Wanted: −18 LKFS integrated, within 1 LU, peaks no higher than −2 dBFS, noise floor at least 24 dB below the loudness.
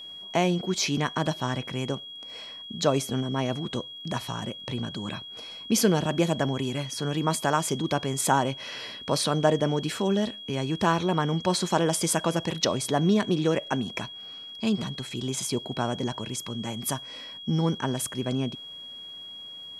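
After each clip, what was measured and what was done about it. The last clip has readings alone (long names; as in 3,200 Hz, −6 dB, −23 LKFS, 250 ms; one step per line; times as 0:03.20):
crackle rate 22 per second; interfering tone 3,300 Hz; level of the tone −39 dBFS; integrated loudness −27.5 LKFS; sample peak −7.5 dBFS; target loudness −18.0 LKFS
→ click removal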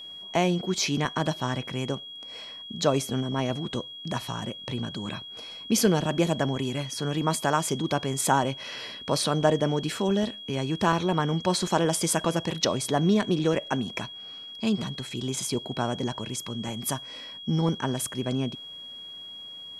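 crackle rate 0 per second; interfering tone 3,300 Hz; level of the tone −39 dBFS
→ notch filter 3,300 Hz, Q 30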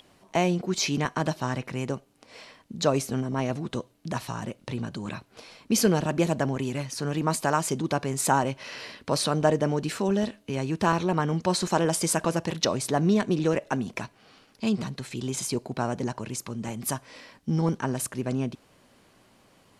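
interfering tone none found; integrated loudness −27.5 LKFS; sample peak −7.5 dBFS; target loudness −18.0 LKFS
→ level +9.5 dB
brickwall limiter −2 dBFS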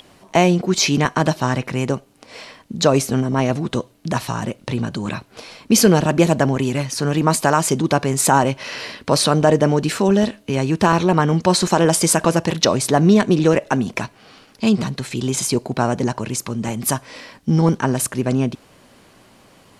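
integrated loudness −18.5 LKFS; sample peak −2.0 dBFS; background noise floor −51 dBFS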